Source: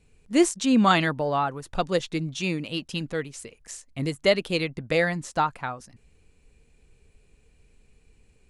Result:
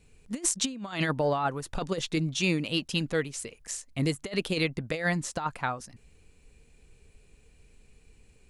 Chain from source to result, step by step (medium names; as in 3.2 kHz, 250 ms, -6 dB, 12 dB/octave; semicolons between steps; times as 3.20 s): treble shelf 3.2 kHz +3 dB; compressor with a negative ratio -25 dBFS, ratio -0.5; trim -2 dB